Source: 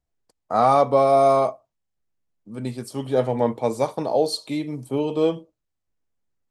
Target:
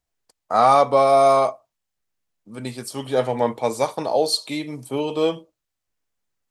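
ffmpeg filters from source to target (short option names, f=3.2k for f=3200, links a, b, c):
-af "tiltshelf=f=670:g=-5,volume=1.5dB"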